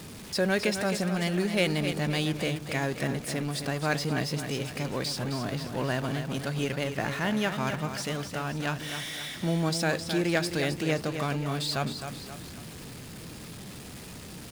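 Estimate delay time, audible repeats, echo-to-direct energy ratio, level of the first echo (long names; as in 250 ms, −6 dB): 263 ms, 3, −7.5 dB, −8.5 dB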